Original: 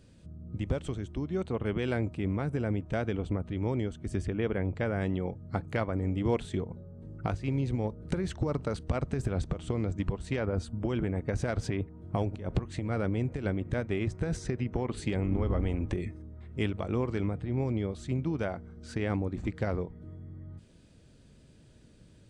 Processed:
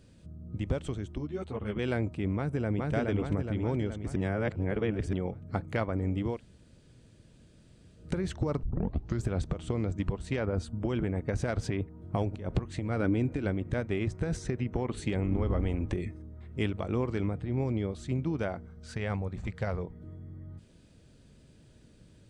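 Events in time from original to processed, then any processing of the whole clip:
0:01.18–0:01.79: string-ensemble chorus
0:02.36–0:02.92: delay throw 420 ms, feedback 60%, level −1 dB
0:04.16–0:05.13: reverse
0:06.31–0:08.04: fill with room tone, crossfade 0.24 s
0:08.63: tape start 0.62 s
0:13.00–0:13.45: hollow resonant body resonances 290/1,500/2,400/3,800 Hz, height 9 dB
0:14.42–0:15.28: notch filter 4,800 Hz
0:18.66–0:19.83: parametric band 300 Hz −13 dB 0.58 octaves

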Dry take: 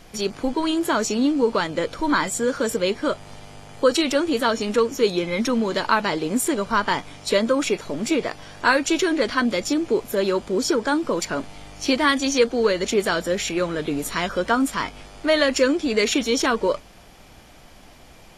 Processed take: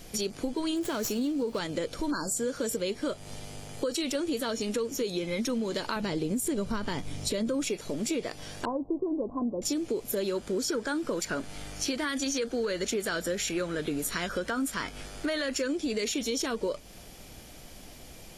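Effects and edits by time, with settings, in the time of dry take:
0:00.76–0:01.59: windowed peak hold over 3 samples
0:02.11–0:02.36: time-frequency box erased 1,700–4,100 Hz
0:05.96–0:07.65: low-shelf EQ 260 Hz +11.5 dB
0:08.65–0:09.62: Chebyshev low-pass with heavy ripple 1,100 Hz, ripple 3 dB
0:10.36–0:15.68: parametric band 1,500 Hz +7 dB 0.64 octaves
whole clip: drawn EQ curve 500 Hz 0 dB, 1,000 Hz −7 dB, 12,000 Hz +7 dB; brickwall limiter −13 dBFS; downward compressor 3 to 1, threshold −30 dBFS

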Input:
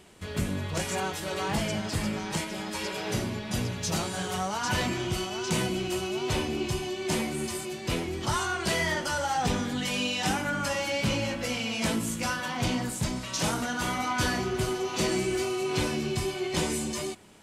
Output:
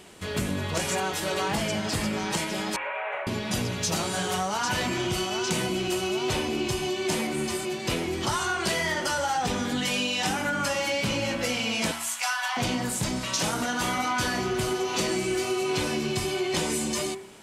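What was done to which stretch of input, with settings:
0:02.76–0:03.27: elliptic band-pass filter 570–2,400 Hz
0:07.27–0:07.80: parametric band 12,000 Hz −5.5 dB 1.8 octaves
0:11.91–0:12.57: elliptic high-pass filter 710 Hz, stop band 50 dB
whole clip: low-shelf EQ 140 Hz −7 dB; hum removal 77.15 Hz, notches 30; downward compressor, threshold −30 dBFS; level +6.5 dB

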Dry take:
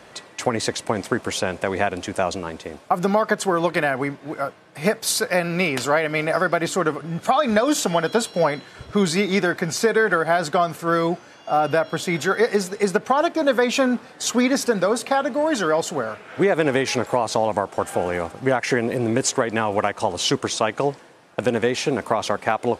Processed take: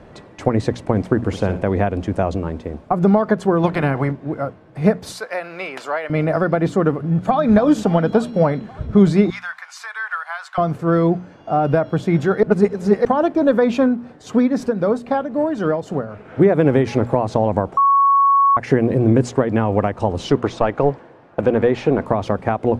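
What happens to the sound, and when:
0:01.16–0:01.62: flutter between parallel walls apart 10.9 metres, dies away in 0.33 s
0:03.62–0:04.10: ceiling on every frequency bin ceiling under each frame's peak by 13 dB
0:05.12–0:06.10: high-pass filter 800 Hz
0:06.99–0:07.54: delay throw 280 ms, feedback 75%, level −14.5 dB
0:09.30–0:10.58: Butterworth high-pass 1,000 Hz
0:12.43–0:13.05: reverse
0:13.77–0:16.25: shaped tremolo triangle 3.8 Hz, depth 65%
0:17.77–0:18.57: beep over 1,110 Hz −8.5 dBFS
0:20.30–0:22.06: mid-hump overdrive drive 11 dB, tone 2,000 Hz, clips at −5 dBFS
whole clip: spectral tilt −4.5 dB per octave; mains-hum notches 60/120/180/240 Hz; level −1 dB

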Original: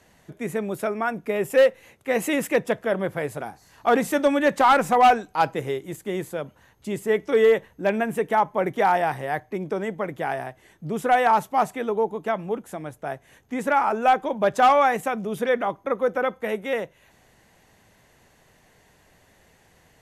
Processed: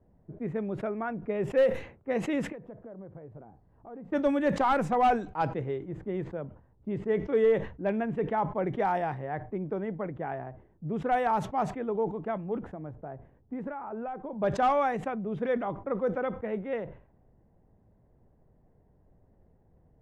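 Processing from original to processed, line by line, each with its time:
0:02.52–0:04.12: downward compressor 3 to 1, threshold −40 dBFS
0:06.24–0:08.65: high-frequency loss of the air 58 metres
0:12.56–0:14.42: downward compressor 4 to 1, threshold −27 dBFS
whole clip: spectral tilt −2.5 dB per octave; low-pass that shuts in the quiet parts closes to 660 Hz, open at −13 dBFS; level that may fall only so fast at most 120 dB per second; level −9 dB

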